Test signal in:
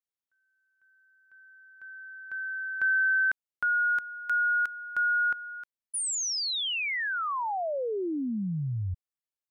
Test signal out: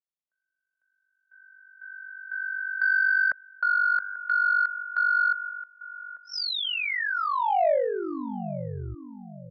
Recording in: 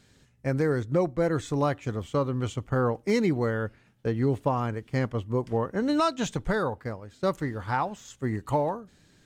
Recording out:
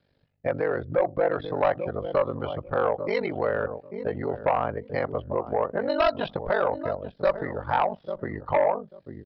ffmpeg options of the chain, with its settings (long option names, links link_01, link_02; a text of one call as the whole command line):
ffmpeg -i in.wav -filter_complex "[0:a]afftdn=noise_reduction=14:noise_floor=-41,equalizer=frequency=610:width_type=o:width=0.87:gain=11,asplit=2[link_01][link_02];[link_02]adelay=841,lowpass=frequency=1400:poles=1,volume=-15dB,asplit=2[link_03][link_04];[link_04]adelay=841,lowpass=frequency=1400:poles=1,volume=0.16[link_05];[link_01][link_03][link_05]amix=inputs=3:normalize=0,acrossover=split=550|1900[link_06][link_07][link_08];[link_06]acompressor=threshold=-35dB:ratio=16:attack=29:release=70:knee=6:detection=rms[link_09];[link_09][link_07][link_08]amix=inputs=3:normalize=0,aeval=exprs='val(0)*sin(2*PI*24*n/s)':channel_layout=same,acrossover=split=410|2600[link_10][link_11][link_12];[link_10]acompressor=threshold=-36dB:ratio=6:attack=27:release=50:knee=2.83:detection=peak[link_13];[link_13][link_11][link_12]amix=inputs=3:normalize=0,aresample=11025,aeval=exprs='0.316*sin(PI/2*2*val(0)/0.316)':channel_layout=same,aresample=44100,adynamicequalizer=threshold=0.0158:dfrequency=4000:dqfactor=0.7:tfrequency=4000:tqfactor=0.7:attack=5:release=100:ratio=0.4:range=3:mode=cutabove:tftype=highshelf,volume=-5dB" out.wav